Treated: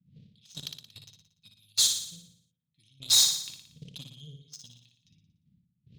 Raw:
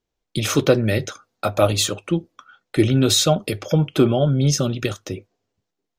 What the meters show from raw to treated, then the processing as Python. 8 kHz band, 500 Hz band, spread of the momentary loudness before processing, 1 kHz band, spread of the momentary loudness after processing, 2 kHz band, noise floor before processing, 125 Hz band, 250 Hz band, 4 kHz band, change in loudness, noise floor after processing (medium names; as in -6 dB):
-2.0 dB, under -40 dB, 12 LU, -27.0 dB, 21 LU, -20.0 dB, -81 dBFS, -30.0 dB, under -30 dB, -2.5 dB, -3.5 dB, -79 dBFS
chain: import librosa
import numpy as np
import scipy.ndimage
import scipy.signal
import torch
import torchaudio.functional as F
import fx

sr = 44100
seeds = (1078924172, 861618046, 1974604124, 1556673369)

y = fx.dmg_wind(x, sr, seeds[0], corner_hz=240.0, level_db=-25.0)
y = fx.weighting(y, sr, curve='A')
y = fx.env_lowpass(y, sr, base_hz=1400.0, full_db=-15.5)
y = scipy.signal.sosfilt(scipy.signal.ellip(3, 1.0, 50, [160.0, 3700.0], 'bandstop', fs=sr, output='sos'), y)
y = fx.high_shelf(y, sr, hz=8800.0, db=11.0)
y = fx.step_gate(y, sr, bpm=110, pattern='xx..x..xx.x..xx', floor_db=-12.0, edge_ms=4.5)
y = 10.0 ** (-15.0 / 20.0) * np.tanh(y / 10.0 ** (-15.0 / 20.0))
y = fx.cheby_harmonics(y, sr, harmonics=(3, 7), levels_db=(-16, -25), full_scale_db=-15.0)
y = fx.room_flutter(y, sr, wall_m=10.0, rt60_s=0.67)